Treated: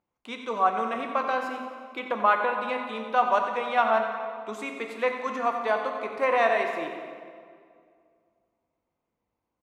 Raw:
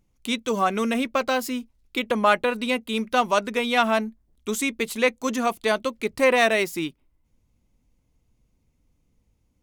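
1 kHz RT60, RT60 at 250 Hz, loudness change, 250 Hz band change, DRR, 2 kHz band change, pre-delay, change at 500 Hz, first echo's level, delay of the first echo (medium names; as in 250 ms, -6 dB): 2.0 s, 2.3 s, -3.0 dB, -11.0 dB, 3.0 dB, -4.5 dB, 4 ms, -3.5 dB, -10.5 dB, 90 ms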